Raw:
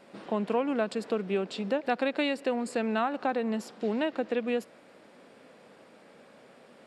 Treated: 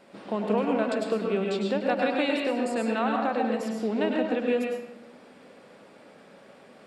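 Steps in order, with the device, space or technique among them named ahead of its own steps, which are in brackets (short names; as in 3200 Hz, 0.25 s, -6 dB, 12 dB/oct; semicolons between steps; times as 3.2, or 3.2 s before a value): bathroom (reverb RT60 0.90 s, pre-delay 97 ms, DRR 0 dB)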